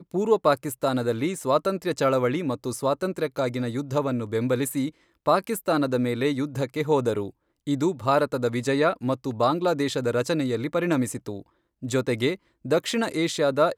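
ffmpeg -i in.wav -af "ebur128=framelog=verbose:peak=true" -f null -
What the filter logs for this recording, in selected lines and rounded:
Integrated loudness:
  I:         -25.2 LUFS
  Threshold: -35.4 LUFS
Loudness range:
  LRA:         2.0 LU
  Threshold: -45.6 LUFS
  LRA low:   -26.6 LUFS
  LRA high:  -24.6 LUFS
True peak:
  Peak:       -6.7 dBFS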